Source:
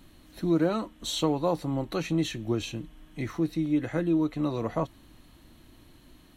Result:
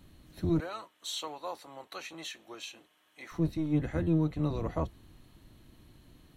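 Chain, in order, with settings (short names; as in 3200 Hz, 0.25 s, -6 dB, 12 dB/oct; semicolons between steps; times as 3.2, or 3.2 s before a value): octaver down 1 oct, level +2 dB; 0.6–3.32 HPF 840 Hz 12 dB/oct; gain -5 dB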